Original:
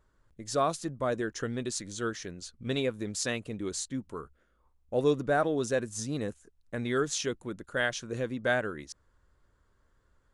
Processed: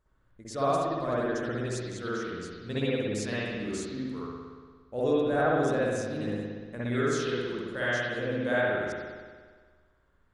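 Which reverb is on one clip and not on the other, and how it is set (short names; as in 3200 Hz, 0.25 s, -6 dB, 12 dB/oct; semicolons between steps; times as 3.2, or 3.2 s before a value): spring tank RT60 1.6 s, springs 58 ms, chirp 40 ms, DRR -8.5 dB; gain -7 dB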